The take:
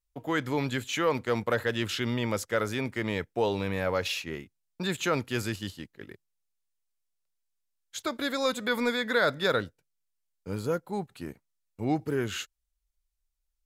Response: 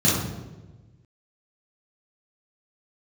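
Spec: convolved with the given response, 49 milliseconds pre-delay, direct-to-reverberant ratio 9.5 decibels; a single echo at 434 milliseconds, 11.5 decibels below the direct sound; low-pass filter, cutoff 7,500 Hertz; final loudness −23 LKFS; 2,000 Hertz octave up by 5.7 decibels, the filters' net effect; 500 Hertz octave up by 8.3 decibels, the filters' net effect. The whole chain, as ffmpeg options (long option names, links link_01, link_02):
-filter_complex "[0:a]lowpass=7500,equalizer=frequency=500:width_type=o:gain=9,equalizer=frequency=2000:width_type=o:gain=7,aecho=1:1:434:0.266,asplit=2[link_01][link_02];[1:a]atrim=start_sample=2205,adelay=49[link_03];[link_02][link_03]afir=irnorm=-1:irlink=0,volume=-26dB[link_04];[link_01][link_04]amix=inputs=2:normalize=0"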